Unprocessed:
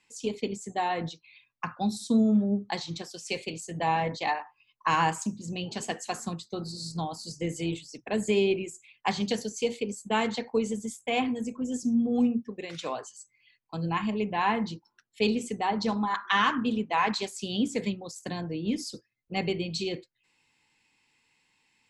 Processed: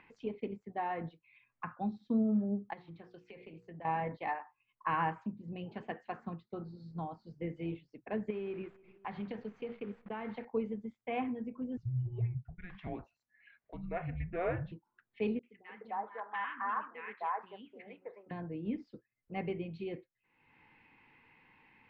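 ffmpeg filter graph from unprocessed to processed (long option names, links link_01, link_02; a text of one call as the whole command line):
ffmpeg -i in.wav -filter_complex "[0:a]asettb=1/sr,asplit=3[link_01][link_02][link_03];[link_01]atrim=end=2.734[link_04];[link_02]atrim=start=2.73:end=3.85,asetpts=PTS-STARTPTS,afade=type=in:duration=0.004:curve=qsin,afade=type=out:start_time=1.116:duration=0.004:curve=qsin,bandreject=frequency=60:width_type=h:width=6,bandreject=frequency=120:width_type=h:width=6,bandreject=frequency=180:width_type=h:width=6,bandreject=frequency=240:width_type=h:width=6,bandreject=frequency=300:width_type=h:width=6,bandreject=frequency=360:width_type=h:width=6,bandreject=frequency=420:width_type=h:width=6,bandreject=frequency=480:width_type=h:width=6,acompressor=threshold=-38dB:ratio=6:attack=3.2:release=140:knee=1:detection=peak[link_05];[link_03]atrim=start=3.846[link_06];[link_04][link_05]acrossfade=duration=0.004:curve1=hsin:curve2=qsin[link_07];[link_07][link_06]acrossfade=duration=0.004:curve1=qsin:curve2=hsin,asettb=1/sr,asplit=3[link_08][link_09][link_10];[link_08]atrim=end=8.304[link_11];[link_09]atrim=start=8.3:end=10.45,asetpts=PTS-STARTPTS,afade=type=in:duration=0.004:curve=qsin,afade=type=out:start_time=2.146:duration=0.004:curve=qsin,acompressor=threshold=-27dB:ratio=10:attack=3.2:release=140:knee=1:detection=peak,acrusher=bits=8:dc=4:mix=0:aa=0.000001,asplit=2[link_12][link_13];[link_13]adelay=291,lowpass=frequency=2400:poles=1,volume=-24dB,asplit=2[link_14][link_15];[link_15]adelay=291,lowpass=frequency=2400:poles=1,volume=0.39[link_16];[link_12][link_14][link_16]amix=inputs=3:normalize=0,atrim=end_sample=94815[link_17];[link_10]atrim=start=10.446[link_18];[link_11][link_17]acrossfade=duration=0.004:curve1=hsin:curve2=qsin[link_19];[link_19][link_18]acrossfade=duration=0.004:curve1=qsin:curve2=hsin,asettb=1/sr,asplit=3[link_20][link_21][link_22];[link_20]atrim=end=11.774[link_23];[link_21]atrim=start=11.77:end=14.72,asetpts=PTS-STARTPTS,afade=type=in:duration=0.004:curve=qsin,afade=type=out:start_time=2.946:duration=0.004:curve=qsin,highpass=210,bandreject=frequency=1700:width=14,afreqshift=-360[link_24];[link_22]atrim=start=14.716[link_25];[link_23][link_24]acrossfade=duration=0.004:curve1=hsin:curve2=qsin[link_26];[link_26][link_25]acrossfade=duration=0.004:curve1=qsin:curve2=hsin,asettb=1/sr,asplit=3[link_27][link_28][link_29];[link_27]atrim=end=15.394[link_30];[link_28]atrim=start=15.39:end=18.31,asetpts=PTS-STARTPTS,afade=type=in:duration=0.004:curve=qsin,afade=type=out:start_time=2.916:duration=0.004:curve=qsin,acrossover=split=460 3000:gain=0.0708 1 0.141[link_31][link_32][link_33];[link_31][link_32][link_33]amix=inputs=3:normalize=0,bandreject=frequency=50:width_type=h:width=6,bandreject=frequency=100:width_type=h:width=6,bandreject=frequency=150:width_type=h:width=6,acrossover=split=320|1600[link_34][link_35][link_36];[link_36]adelay=40[link_37];[link_35]adelay=300[link_38];[link_34][link_38][link_37]amix=inputs=3:normalize=0,atrim=end_sample=128772[link_39];[link_29]atrim=start=18.306[link_40];[link_30][link_39]acrossfade=duration=0.004:curve1=hsin:curve2=qsin[link_41];[link_41][link_40]acrossfade=duration=0.004:curve1=qsin:curve2=hsin,lowpass=frequency=2200:width=0.5412,lowpass=frequency=2200:width=1.3066,acompressor=mode=upward:threshold=-41dB:ratio=2.5,volume=-7.5dB" out.wav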